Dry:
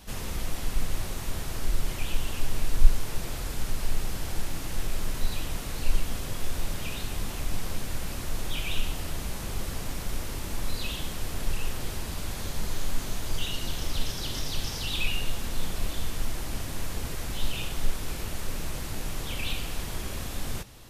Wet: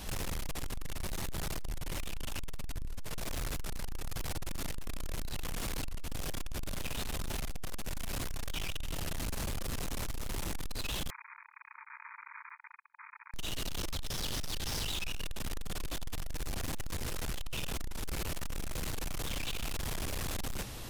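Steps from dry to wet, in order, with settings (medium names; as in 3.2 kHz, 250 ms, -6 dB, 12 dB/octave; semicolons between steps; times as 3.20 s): compression 16:1, threshold -25 dBFS, peak gain reduction 19.5 dB; peak limiter -23.5 dBFS, peak gain reduction 4.5 dB; saturation -40 dBFS, distortion -7 dB; 11.10–13.34 s: brick-wall FIR band-pass 870–2500 Hz; trim +7 dB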